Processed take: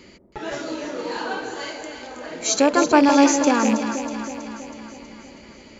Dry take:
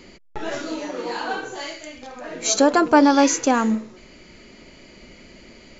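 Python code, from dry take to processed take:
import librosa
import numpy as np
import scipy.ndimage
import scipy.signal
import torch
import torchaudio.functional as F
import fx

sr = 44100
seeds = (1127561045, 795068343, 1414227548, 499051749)

y = fx.rattle_buzz(x, sr, strikes_db=-24.0, level_db=-17.0)
y = scipy.signal.sosfilt(scipy.signal.butter(2, 40.0, 'highpass', fs=sr, output='sos'), y)
y = fx.notch(y, sr, hz=730.0, q=12.0)
y = fx.echo_alternate(y, sr, ms=161, hz=900.0, feedback_pct=76, wet_db=-6)
y = y * 10.0 ** (-1.0 / 20.0)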